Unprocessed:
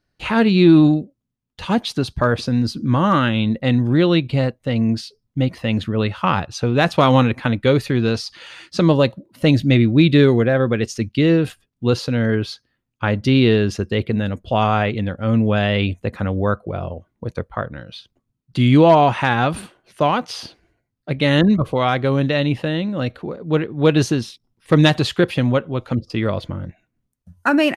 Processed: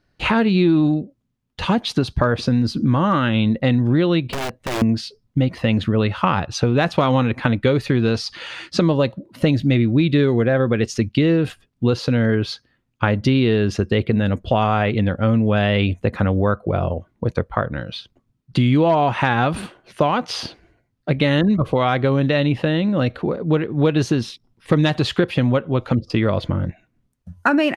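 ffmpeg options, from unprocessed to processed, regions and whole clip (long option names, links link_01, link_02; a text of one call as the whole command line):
ffmpeg -i in.wav -filter_complex "[0:a]asettb=1/sr,asplit=3[link_01][link_02][link_03];[link_01]atrim=end=4.324[link_04];[link_02]atrim=start=4.32:end=4.82,asetpts=PTS-STARTPTS,afade=type=in:duration=0.004:curve=qsin,afade=type=out:start_time=0.496:duration=0.004:curve=qsin,acompressor=threshold=-25dB:ratio=10:attack=3.2:release=140:knee=1:detection=peak,aeval=exprs='(mod(17.8*val(0)+1,2)-1)/17.8':channel_layout=same[link_05];[link_03]atrim=start=4.816[link_06];[link_04][link_05]acrossfade=duration=0.004:curve1=hsin:curve2=qsin[link_07];[link_07][link_06]acrossfade=duration=0.004:curve1=qsin:curve2=hsin,highshelf=frequency=6900:gain=-10,acompressor=threshold=-22dB:ratio=4,volume=7dB" out.wav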